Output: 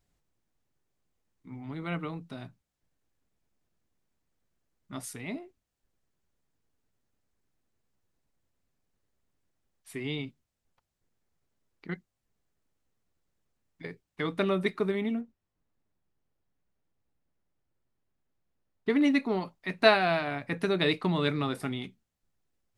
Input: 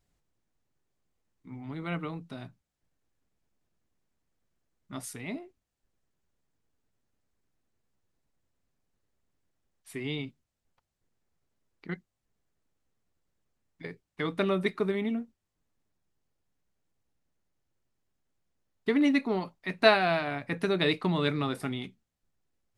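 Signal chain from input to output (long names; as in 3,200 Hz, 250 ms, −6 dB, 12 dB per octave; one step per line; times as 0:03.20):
0:15.21–0:18.90: low-pass filter 2,400 Hz 6 dB per octave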